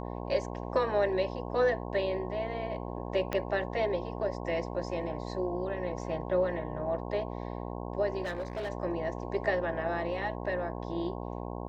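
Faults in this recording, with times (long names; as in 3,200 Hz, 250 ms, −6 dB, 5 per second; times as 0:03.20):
mains buzz 60 Hz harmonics 18 −38 dBFS
0:03.33: click −17 dBFS
0:08.23–0:08.70: clipping −31 dBFS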